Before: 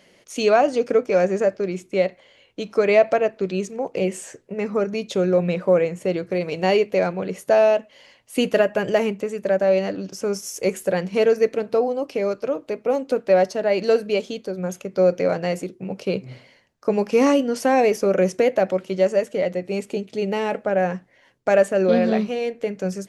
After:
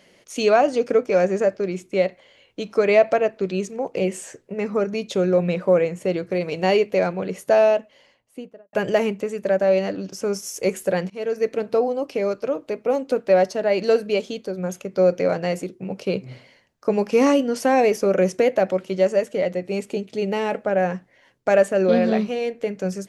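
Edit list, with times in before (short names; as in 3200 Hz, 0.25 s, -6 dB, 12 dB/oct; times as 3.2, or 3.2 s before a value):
7.59–8.73 studio fade out
11.1–11.62 fade in, from -20.5 dB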